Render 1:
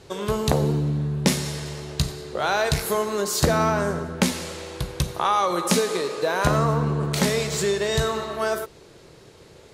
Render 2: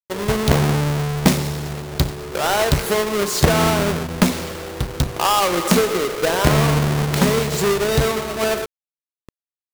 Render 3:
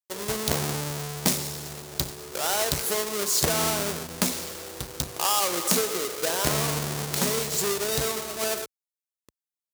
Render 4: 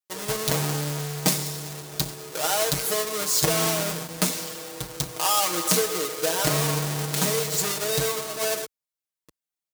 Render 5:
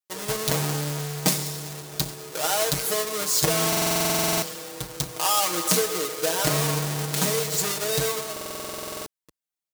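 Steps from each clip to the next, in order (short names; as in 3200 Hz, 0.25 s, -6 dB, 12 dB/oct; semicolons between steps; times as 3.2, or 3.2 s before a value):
half-waves squared off; bit-crush 6-bit
HPF 54 Hz; tone controls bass -5 dB, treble +11 dB; gain -9.5 dB
comb 6.4 ms, depth 85%; gain -1 dB
stuck buffer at 3.68/8.32, samples 2048, times 15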